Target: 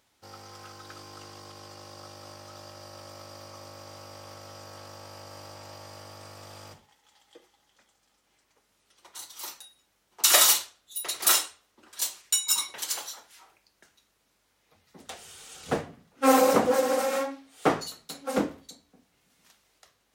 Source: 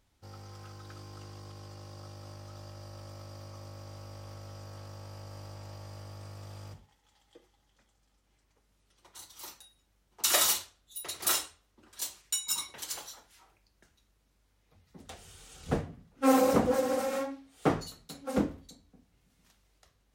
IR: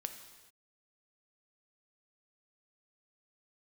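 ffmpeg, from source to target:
-af "highpass=frequency=470:poles=1,volume=7dB"

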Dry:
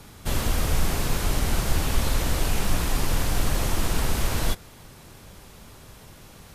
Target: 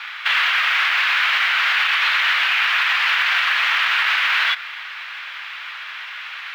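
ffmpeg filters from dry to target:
ffmpeg -i in.wav -af "highpass=frequency=1500:width=0.5412,highpass=frequency=1500:width=1.3066,acontrast=64,lowpass=frequency=2900:width=0.5412,lowpass=frequency=2900:width=1.3066,acrusher=bits=8:mode=log:mix=0:aa=0.000001,alimiter=level_in=29dB:limit=-1dB:release=50:level=0:latency=1,volume=-8.5dB" out.wav

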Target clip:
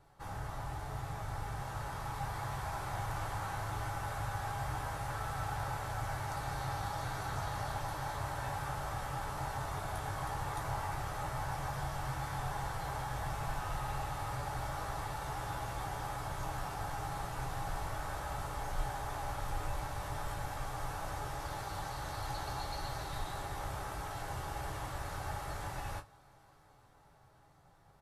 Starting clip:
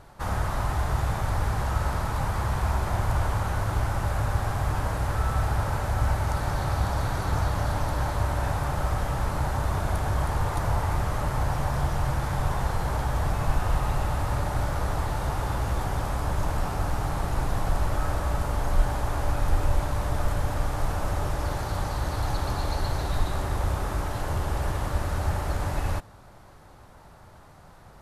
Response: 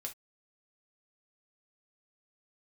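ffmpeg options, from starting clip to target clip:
-filter_complex "[0:a]asplit=2[link_01][link_02];[link_02]adelay=16,volume=-10.5dB[link_03];[link_01][link_03]amix=inputs=2:normalize=0[link_04];[1:a]atrim=start_sample=2205,asetrate=70560,aresample=44100[link_05];[link_04][link_05]afir=irnorm=-1:irlink=0,acrossover=split=640[link_06][link_07];[link_07]dynaudnorm=framelen=360:gausssize=11:maxgain=6dB[link_08];[link_06][link_08]amix=inputs=2:normalize=0,volume=-7dB"

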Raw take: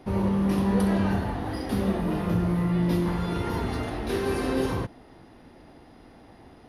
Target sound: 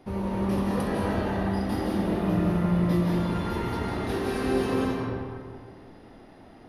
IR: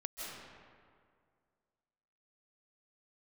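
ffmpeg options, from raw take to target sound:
-filter_complex "[0:a]bandreject=frequency=51.76:width_type=h:width=4,bandreject=frequency=103.52:width_type=h:width=4,bandreject=frequency=155.28:width_type=h:width=4[link_01];[1:a]atrim=start_sample=2205[link_02];[link_01][link_02]afir=irnorm=-1:irlink=0"

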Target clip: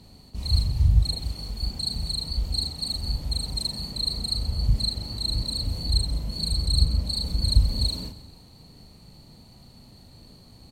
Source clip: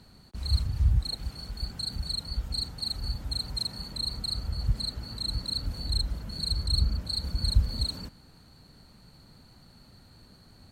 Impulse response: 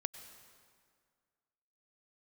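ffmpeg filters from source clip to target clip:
-filter_complex "[0:a]equalizer=frequency=1500:width_type=o:width=0.63:gain=-12.5,asplit=2[link_01][link_02];[link_02]adelay=38,volume=-3.5dB[link_03];[link_01][link_03]amix=inputs=2:normalize=0,asplit=2[link_04][link_05];[1:a]atrim=start_sample=2205,adelay=130[link_06];[link_05][link_06]afir=irnorm=-1:irlink=0,volume=-12.5dB[link_07];[link_04][link_07]amix=inputs=2:normalize=0,volume=3.5dB"

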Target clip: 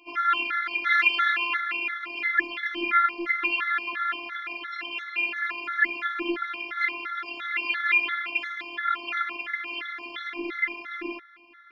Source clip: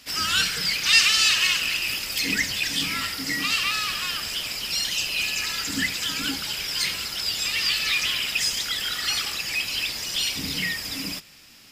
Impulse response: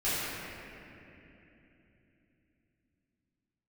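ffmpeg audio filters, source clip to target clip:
-af "highpass=frequency=230:width=0.5412,highpass=frequency=230:width=1.3066,equalizer=frequency=250:width_type=q:width=4:gain=4,equalizer=frequency=590:width_type=q:width=4:gain=-9,equalizer=frequency=950:width_type=q:width=4:gain=3,equalizer=frequency=1400:width_type=q:width=4:gain=9,equalizer=frequency=2200:width_type=q:width=4:gain=5,lowpass=frequency=2300:width=0.5412,lowpass=frequency=2300:width=1.3066,afftfilt=real='hypot(re,im)*cos(PI*b)':imag='0':win_size=512:overlap=0.75,afftfilt=real='re*gt(sin(2*PI*2.9*pts/sr)*(1-2*mod(floor(b*sr/1024/1100),2)),0)':imag='im*gt(sin(2*PI*2.9*pts/sr)*(1-2*mod(floor(b*sr/1024/1100),2)),0)':win_size=1024:overlap=0.75,volume=6.5dB"

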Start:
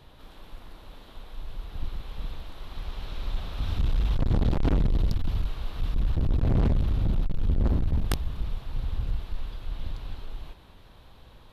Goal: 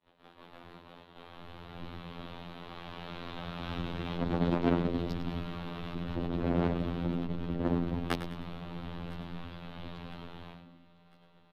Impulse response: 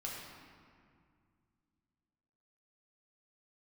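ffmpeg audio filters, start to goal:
-filter_complex "[0:a]agate=range=-33dB:threshold=-40dB:ratio=3:detection=peak,asplit=2[link_01][link_02];[link_02]asplit=4[link_03][link_04][link_05][link_06];[link_03]adelay=102,afreqshift=71,volume=-11dB[link_07];[link_04]adelay=204,afreqshift=142,volume=-19.6dB[link_08];[link_05]adelay=306,afreqshift=213,volume=-28.3dB[link_09];[link_06]adelay=408,afreqshift=284,volume=-36.9dB[link_10];[link_07][link_08][link_09][link_10]amix=inputs=4:normalize=0[link_11];[link_01][link_11]amix=inputs=2:normalize=0,afftfilt=real='hypot(re,im)*cos(PI*b)':imag='0':win_size=2048:overlap=0.75,acrossover=split=170 3600:gain=0.1 1 0.2[link_12][link_13][link_14];[link_12][link_13][link_14]amix=inputs=3:normalize=0,asplit=2[link_15][link_16];[link_16]aecho=0:1:1005|2010|3015:0.0891|0.0401|0.018[link_17];[link_15][link_17]amix=inputs=2:normalize=0,volume=5.5dB"

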